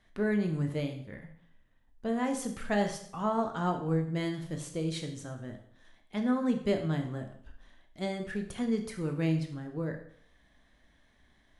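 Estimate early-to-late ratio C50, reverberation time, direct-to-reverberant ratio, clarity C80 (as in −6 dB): 9.0 dB, 0.65 s, 4.0 dB, 12.0 dB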